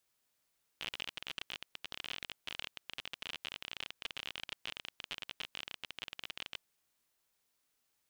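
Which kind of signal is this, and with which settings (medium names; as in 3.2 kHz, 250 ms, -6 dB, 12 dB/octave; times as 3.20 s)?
random clicks 34 per s -24 dBFS 5.81 s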